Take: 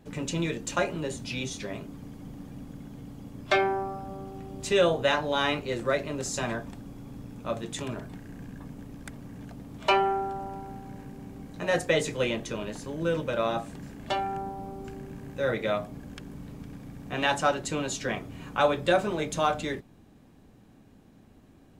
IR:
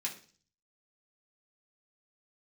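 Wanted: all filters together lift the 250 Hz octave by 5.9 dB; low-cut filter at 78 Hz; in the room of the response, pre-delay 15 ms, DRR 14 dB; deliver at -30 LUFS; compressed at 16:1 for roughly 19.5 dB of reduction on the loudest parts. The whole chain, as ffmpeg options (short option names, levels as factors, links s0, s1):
-filter_complex "[0:a]highpass=78,equalizer=f=250:t=o:g=8,acompressor=threshold=0.0158:ratio=16,asplit=2[s0][s1];[1:a]atrim=start_sample=2205,adelay=15[s2];[s1][s2]afir=irnorm=-1:irlink=0,volume=0.168[s3];[s0][s3]amix=inputs=2:normalize=0,volume=3.35"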